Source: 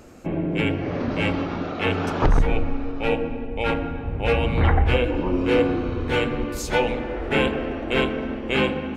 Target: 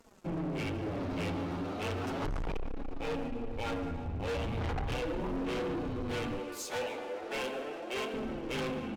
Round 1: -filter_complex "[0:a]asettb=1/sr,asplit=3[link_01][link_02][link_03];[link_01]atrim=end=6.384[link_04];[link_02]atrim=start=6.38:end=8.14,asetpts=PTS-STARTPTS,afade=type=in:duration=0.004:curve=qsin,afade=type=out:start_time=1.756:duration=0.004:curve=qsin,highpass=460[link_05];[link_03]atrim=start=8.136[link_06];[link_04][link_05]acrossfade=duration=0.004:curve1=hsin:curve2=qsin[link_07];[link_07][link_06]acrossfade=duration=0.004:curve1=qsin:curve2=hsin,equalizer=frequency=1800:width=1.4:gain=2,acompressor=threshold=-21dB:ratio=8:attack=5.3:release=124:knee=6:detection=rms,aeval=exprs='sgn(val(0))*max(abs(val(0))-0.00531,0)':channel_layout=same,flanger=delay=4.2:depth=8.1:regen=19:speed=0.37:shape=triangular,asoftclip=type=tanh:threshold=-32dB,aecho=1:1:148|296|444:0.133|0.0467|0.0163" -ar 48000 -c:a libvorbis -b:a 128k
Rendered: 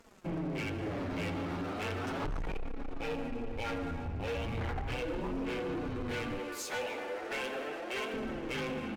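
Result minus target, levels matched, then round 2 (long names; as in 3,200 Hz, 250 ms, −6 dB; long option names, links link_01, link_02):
downward compressor: peak gain reduction +9 dB; 2,000 Hz band +2.5 dB
-filter_complex "[0:a]asettb=1/sr,asplit=3[link_01][link_02][link_03];[link_01]atrim=end=6.384[link_04];[link_02]atrim=start=6.38:end=8.14,asetpts=PTS-STARTPTS,afade=type=in:duration=0.004:curve=qsin,afade=type=out:start_time=1.756:duration=0.004:curve=qsin,highpass=460[link_05];[link_03]atrim=start=8.136[link_06];[link_04][link_05]acrossfade=duration=0.004:curve1=hsin:curve2=qsin[link_07];[link_07][link_06]acrossfade=duration=0.004:curve1=qsin:curve2=hsin,equalizer=frequency=1800:width=1.4:gain=-5,aeval=exprs='sgn(val(0))*max(abs(val(0))-0.00531,0)':channel_layout=same,flanger=delay=4.2:depth=8.1:regen=19:speed=0.37:shape=triangular,asoftclip=type=tanh:threshold=-32dB,aecho=1:1:148|296|444:0.133|0.0467|0.0163" -ar 48000 -c:a libvorbis -b:a 128k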